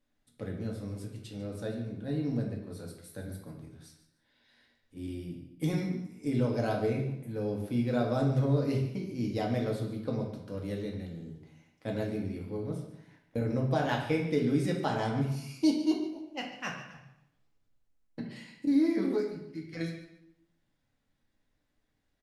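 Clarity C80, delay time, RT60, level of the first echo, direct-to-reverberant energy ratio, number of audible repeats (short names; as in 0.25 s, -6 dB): 7.5 dB, 0.145 s, 0.75 s, -14.0 dB, -1.0 dB, 1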